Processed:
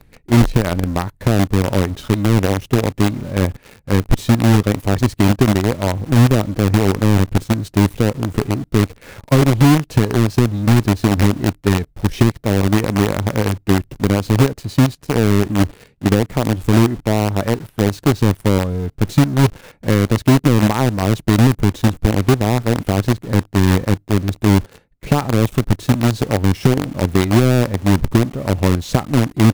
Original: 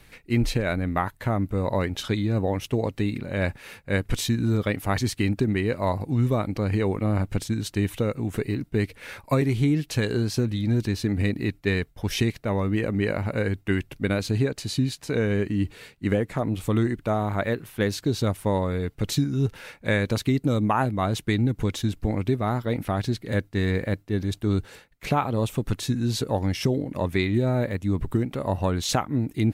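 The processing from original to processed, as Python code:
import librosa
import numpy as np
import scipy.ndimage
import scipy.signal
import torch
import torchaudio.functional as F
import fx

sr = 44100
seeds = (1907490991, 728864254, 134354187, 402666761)

p1 = fx.tilt_shelf(x, sr, db=8.0, hz=780.0)
p2 = fx.quant_companded(p1, sr, bits=2)
p3 = p1 + F.gain(torch.from_numpy(p2), -5.5).numpy()
y = F.gain(torch.from_numpy(p3), -3.0).numpy()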